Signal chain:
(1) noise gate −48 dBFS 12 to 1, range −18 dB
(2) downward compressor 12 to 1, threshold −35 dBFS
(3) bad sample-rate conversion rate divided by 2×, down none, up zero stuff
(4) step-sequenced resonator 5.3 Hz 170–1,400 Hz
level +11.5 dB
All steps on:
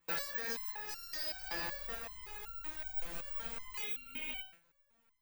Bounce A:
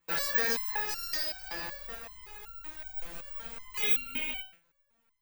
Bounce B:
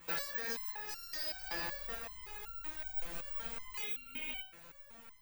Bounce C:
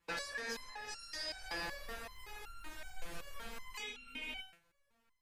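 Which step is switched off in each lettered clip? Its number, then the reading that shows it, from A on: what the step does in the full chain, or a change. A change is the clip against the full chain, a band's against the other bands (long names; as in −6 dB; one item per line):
2, average gain reduction 4.0 dB
1, change in momentary loudness spread +3 LU
3, change in momentary loudness spread +3 LU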